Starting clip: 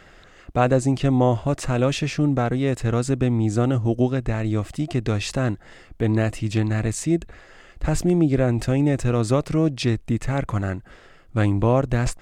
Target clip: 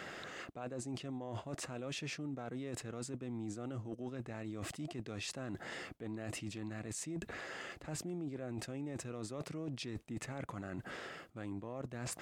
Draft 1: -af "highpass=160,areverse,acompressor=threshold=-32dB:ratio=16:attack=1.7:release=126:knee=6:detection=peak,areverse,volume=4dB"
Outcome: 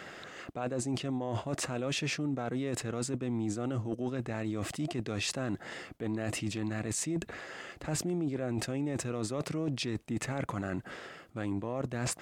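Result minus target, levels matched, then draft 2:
compressor: peak gain reduction -9 dB
-af "highpass=160,areverse,acompressor=threshold=-41.5dB:ratio=16:attack=1.7:release=126:knee=6:detection=peak,areverse,volume=4dB"

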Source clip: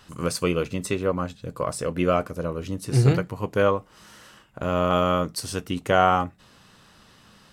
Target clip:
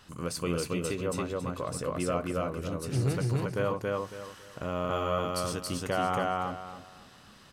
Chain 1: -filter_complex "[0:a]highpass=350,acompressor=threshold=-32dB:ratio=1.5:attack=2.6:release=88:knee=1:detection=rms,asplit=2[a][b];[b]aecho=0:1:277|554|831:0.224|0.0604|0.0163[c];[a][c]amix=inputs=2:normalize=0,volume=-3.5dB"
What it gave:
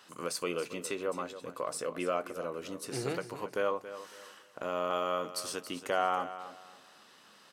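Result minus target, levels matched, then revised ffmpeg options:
echo-to-direct -11.5 dB; 250 Hz band -4.0 dB
-filter_complex "[0:a]acompressor=threshold=-32dB:ratio=1.5:attack=2.6:release=88:knee=1:detection=rms,asplit=2[a][b];[b]aecho=0:1:277|554|831|1108:0.841|0.227|0.0613|0.0166[c];[a][c]amix=inputs=2:normalize=0,volume=-3.5dB"

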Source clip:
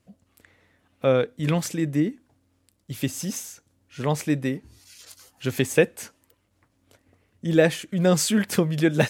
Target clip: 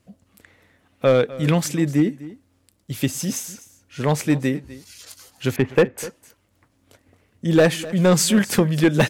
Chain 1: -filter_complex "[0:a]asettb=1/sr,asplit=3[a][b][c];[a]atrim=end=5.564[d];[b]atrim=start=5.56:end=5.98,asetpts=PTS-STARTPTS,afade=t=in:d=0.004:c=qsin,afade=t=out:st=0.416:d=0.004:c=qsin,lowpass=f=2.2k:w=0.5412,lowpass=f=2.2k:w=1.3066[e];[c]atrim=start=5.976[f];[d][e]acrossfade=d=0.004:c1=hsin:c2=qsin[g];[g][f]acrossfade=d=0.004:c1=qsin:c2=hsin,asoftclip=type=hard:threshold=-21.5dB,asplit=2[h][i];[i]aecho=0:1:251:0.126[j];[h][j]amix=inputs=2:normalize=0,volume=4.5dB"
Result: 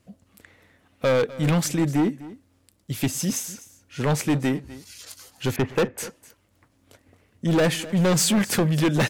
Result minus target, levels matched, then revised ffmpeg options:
hard clip: distortion +9 dB
-filter_complex "[0:a]asettb=1/sr,asplit=3[a][b][c];[a]atrim=end=5.564[d];[b]atrim=start=5.56:end=5.98,asetpts=PTS-STARTPTS,afade=t=in:d=0.004:c=qsin,afade=t=out:st=0.416:d=0.004:c=qsin,lowpass=f=2.2k:w=0.5412,lowpass=f=2.2k:w=1.3066[e];[c]atrim=start=5.976[f];[d][e]acrossfade=d=0.004:c1=hsin:c2=qsin[g];[g][f]acrossfade=d=0.004:c1=qsin:c2=hsin,asoftclip=type=hard:threshold=-13.5dB,asplit=2[h][i];[i]aecho=0:1:251:0.126[j];[h][j]amix=inputs=2:normalize=0,volume=4.5dB"

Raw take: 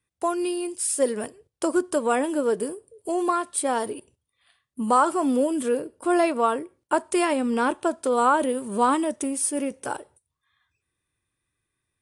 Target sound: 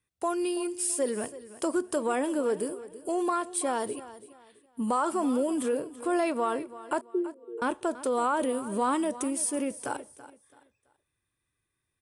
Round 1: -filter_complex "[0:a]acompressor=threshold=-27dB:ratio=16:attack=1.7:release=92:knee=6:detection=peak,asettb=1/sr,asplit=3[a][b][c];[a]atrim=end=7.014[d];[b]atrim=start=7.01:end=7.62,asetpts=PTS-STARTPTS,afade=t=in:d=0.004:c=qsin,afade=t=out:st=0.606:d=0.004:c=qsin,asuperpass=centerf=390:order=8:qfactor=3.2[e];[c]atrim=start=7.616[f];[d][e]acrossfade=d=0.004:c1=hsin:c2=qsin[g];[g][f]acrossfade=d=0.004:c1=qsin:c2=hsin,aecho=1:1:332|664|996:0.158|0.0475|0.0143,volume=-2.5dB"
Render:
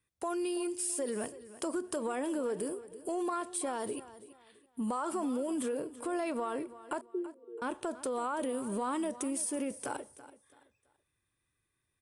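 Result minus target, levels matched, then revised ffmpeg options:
compressor: peak gain reduction +8.5 dB
-filter_complex "[0:a]acompressor=threshold=-18dB:ratio=16:attack=1.7:release=92:knee=6:detection=peak,asettb=1/sr,asplit=3[a][b][c];[a]atrim=end=7.014[d];[b]atrim=start=7.01:end=7.62,asetpts=PTS-STARTPTS,afade=t=in:d=0.004:c=qsin,afade=t=out:st=0.606:d=0.004:c=qsin,asuperpass=centerf=390:order=8:qfactor=3.2[e];[c]atrim=start=7.616[f];[d][e]acrossfade=d=0.004:c1=hsin:c2=qsin[g];[g][f]acrossfade=d=0.004:c1=qsin:c2=hsin,aecho=1:1:332|664|996:0.158|0.0475|0.0143,volume=-2.5dB"

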